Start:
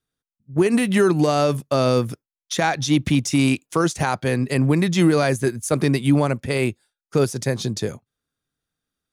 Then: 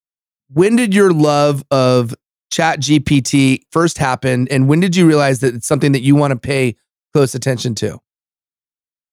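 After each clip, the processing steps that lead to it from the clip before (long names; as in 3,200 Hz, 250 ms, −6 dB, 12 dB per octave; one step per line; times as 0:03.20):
downward expander −30 dBFS
level +6.5 dB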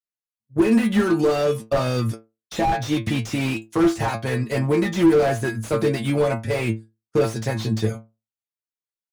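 stiff-string resonator 110 Hz, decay 0.27 s, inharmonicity 0.002
slew-rate limiting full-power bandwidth 57 Hz
level +4.5 dB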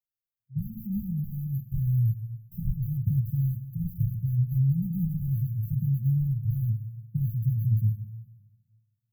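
linear-phase brick-wall band-stop 190–12,000 Hz
dense smooth reverb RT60 1.5 s, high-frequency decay 0.95×, DRR 10.5 dB
level +2 dB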